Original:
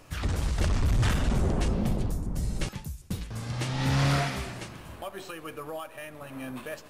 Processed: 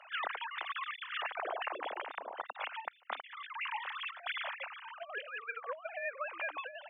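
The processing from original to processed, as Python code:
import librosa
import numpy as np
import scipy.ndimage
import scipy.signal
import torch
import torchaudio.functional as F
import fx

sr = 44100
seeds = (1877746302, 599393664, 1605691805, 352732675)

y = fx.sine_speech(x, sr)
y = scipy.signal.sosfilt(scipy.signal.butter(4, 700.0, 'highpass', fs=sr, output='sos'), y)
y = fx.over_compress(y, sr, threshold_db=-32.0, ratio=-0.5)
y = y * 10.0 ** (-6.0 / 20.0)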